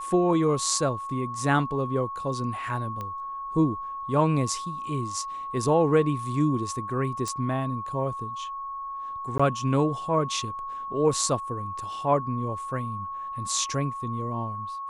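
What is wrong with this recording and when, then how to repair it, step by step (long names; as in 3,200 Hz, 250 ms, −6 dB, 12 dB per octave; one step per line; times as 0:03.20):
whistle 1,100 Hz −32 dBFS
0:03.01: click −21 dBFS
0:07.28: click −18 dBFS
0:09.38–0:09.39: drop-out 15 ms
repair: click removal
notch filter 1,100 Hz, Q 30
repair the gap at 0:09.38, 15 ms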